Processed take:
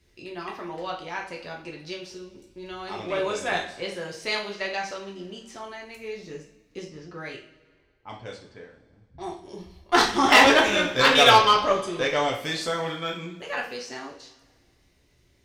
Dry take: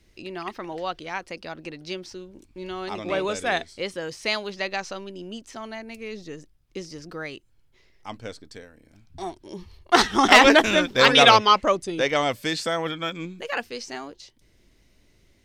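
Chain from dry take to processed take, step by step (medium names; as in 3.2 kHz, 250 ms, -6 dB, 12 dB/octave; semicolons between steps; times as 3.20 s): 6.84–9.41 s: level-controlled noise filter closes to 790 Hz, open at -30 dBFS; two-slope reverb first 0.42 s, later 1.8 s, from -18 dB, DRR -2 dB; Chebyshev shaper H 6 -26 dB, 8 -24 dB, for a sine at 3.5 dBFS; trim -5.5 dB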